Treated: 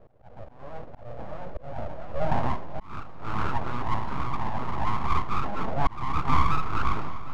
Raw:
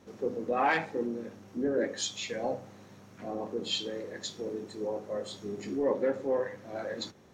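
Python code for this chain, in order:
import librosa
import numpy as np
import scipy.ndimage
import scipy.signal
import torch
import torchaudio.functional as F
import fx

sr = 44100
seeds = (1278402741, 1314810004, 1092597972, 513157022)

y = fx.echo_pitch(x, sr, ms=753, semitones=2, count=2, db_per_echo=-3.0)
y = fx.filter_sweep_lowpass(y, sr, from_hz=320.0, to_hz=650.0, start_s=2.17, end_s=2.98, q=2.6)
y = np.abs(y)
y = fx.air_absorb(y, sr, metres=50.0)
y = fx.echo_heads(y, sr, ms=250, heads='all three', feedback_pct=66, wet_db=-23.5)
y = fx.auto_swell(y, sr, attack_ms=636.0)
y = y * 10.0 ** (4.5 / 20.0)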